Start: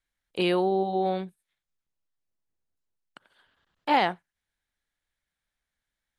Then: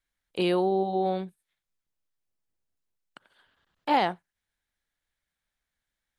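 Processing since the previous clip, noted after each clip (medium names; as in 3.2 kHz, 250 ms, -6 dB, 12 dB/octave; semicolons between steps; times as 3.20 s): dynamic bell 2.1 kHz, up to -4 dB, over -40 dBFS, Q 0.88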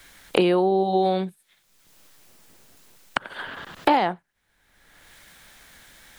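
three bands compressed up and down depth 100%; trim +5.5 dB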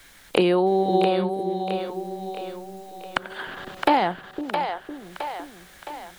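two-band feedback delay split 420 Hz, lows 507 ms, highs 665 ms, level -6 dB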